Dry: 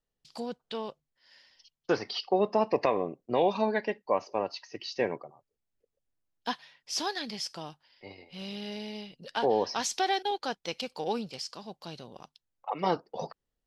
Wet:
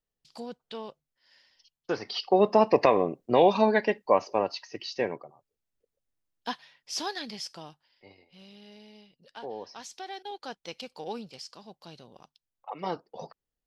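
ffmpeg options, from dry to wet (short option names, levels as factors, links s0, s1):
-af "volume=4.47,afade=t=in:st=1.96:d=0.51:silence=0.375837,afade=t=out:st=4.11:d=1.04:silence=0.473151,afade=t=out:st=7.21:d=1.27:silence=0.266073,afade=t=in:st=10.09:d=0.49:silence=0.421697"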